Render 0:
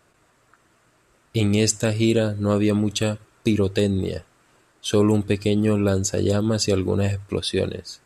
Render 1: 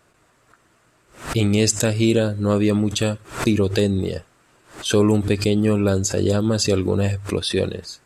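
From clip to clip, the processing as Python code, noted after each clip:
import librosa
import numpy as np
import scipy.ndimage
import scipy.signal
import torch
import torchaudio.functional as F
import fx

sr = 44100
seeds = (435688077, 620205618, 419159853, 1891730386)

y = fx.pre_swell(x, sr, db_per_s=140.0)
y = F.gain(torch.from_numpy(y), 1.5).numpy()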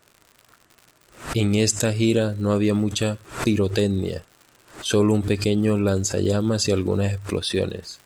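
y = fx.dmg_crackle(x, sr, seeds[0], per_s=120.0, level_db=-34.0)
y = F.gain(torch.from_numpy(y), -2.0).numpy()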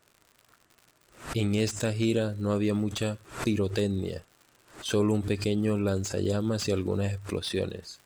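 y = fx.slew_limit(x, sr, full_power_hz=340.0)
y = F.gain(torch.from_numpy(y), -6.5).numpy()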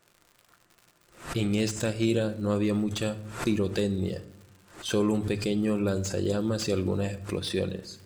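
y = fx.room_shoebox(x, sr, seeds[1], volume_m3=2600.0, walls='furnished', distance_m=0.86)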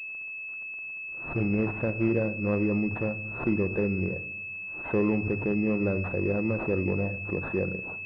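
y = fx.pwm(x, sr, carrier_hz=2600.0)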